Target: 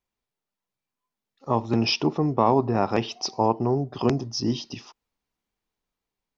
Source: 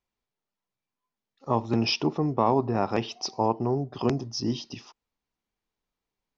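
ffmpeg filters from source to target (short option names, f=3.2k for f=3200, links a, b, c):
-af "dynaudnorm=f=610:g=5:m=3dB"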